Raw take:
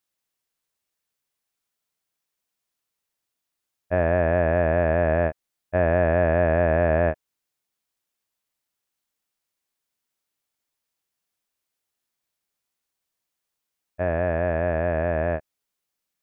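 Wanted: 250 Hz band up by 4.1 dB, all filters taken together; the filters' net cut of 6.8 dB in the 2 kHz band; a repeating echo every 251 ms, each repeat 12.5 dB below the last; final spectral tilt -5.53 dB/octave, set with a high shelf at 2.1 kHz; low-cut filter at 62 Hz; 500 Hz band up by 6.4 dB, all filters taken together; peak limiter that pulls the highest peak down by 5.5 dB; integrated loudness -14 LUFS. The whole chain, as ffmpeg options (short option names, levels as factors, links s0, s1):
-af "highpass=62,equalizer=f=250:t=o:g=3,equalizer=f=500:t=o:g=9,equalizer=f=2000:t=o:g=-5,highshelf=f=2100:g=-8.5,alimiter=limit=0.299:level=0:latency=1,aecho=1:1:251|502|753:0.237|0.0569|0.0137,volume=2.24"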